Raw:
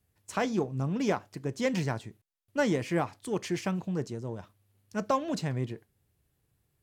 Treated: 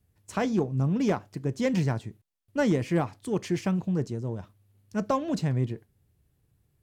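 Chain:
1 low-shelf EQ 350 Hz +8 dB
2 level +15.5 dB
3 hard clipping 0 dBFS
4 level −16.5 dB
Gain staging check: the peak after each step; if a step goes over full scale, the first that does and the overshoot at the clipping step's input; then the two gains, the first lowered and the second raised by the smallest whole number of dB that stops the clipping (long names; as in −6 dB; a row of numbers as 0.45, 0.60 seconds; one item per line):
−12.5, +3.0, 0.0, −16.5 dBFS
step 2, 3.0 dB
step 2 +12.5 dB, step 4 −13.5 dB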